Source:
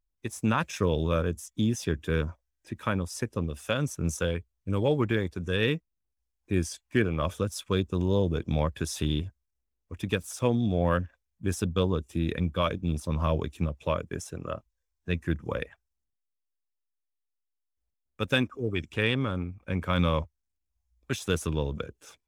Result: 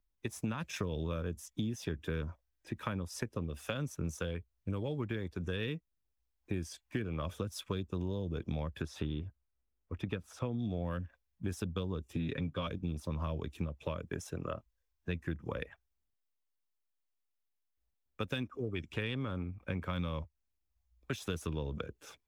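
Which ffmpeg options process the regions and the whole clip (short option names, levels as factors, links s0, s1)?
-filter_complex "[0:a]asettb=1/sr,asplit=3[s0][s1][s2];[s0]atrim=end=8.824[s3];[s1]atrim=start=8.82:end=10.59,asetpts=PTS-STARTPTS,afade=t=in:d=0.004:c=qsin,afade=t=out:st=1.766:d=0.004:c=qsin,lowpass=f=2100:p=1,equalizer=f=1300:w=7.1:g=4.5[s4];[s2]atrim=start=10.586[s5];[s3][s4]acrossfade=d=0.004:c1=hsin:c2=qsin[s6];[s6][s5]acrossfade=d=0.004:c1=qsin:c2=hsin,asettb=1/sr,asplit=3[s7][s8][s9];[s7]atrim=end=12.134[s10];[s8]atrim=start=12.13:end=12.67,asetpts=PTS-STARTPTS,afade=t=in:d=0.004:c=qsin,afade=t=out:st=0.536:d=0.004:c=qsin,lowpass=7500,aecho=1:1:7.4:0.69,atrim=end_sample=23814[s11];[s9]atrim=start=12.666[s12];[s10][s11]acrossfade=d=0.004:c1=hsin:c2=qsin[s13];[s13][s12]acrossfade=d=0.004:c1=qsin:c2=hsin,acrossover=split=280|3000[s14][s15][s16];[s15]acompressor=threshold=0.0355:ratio=6[s17];[s14][s17][s16]amix=inputs=3:normalize=0,equalizer=f=8400:w=0.95:g=-6,acompressor=threshold=0.02:ratio=4"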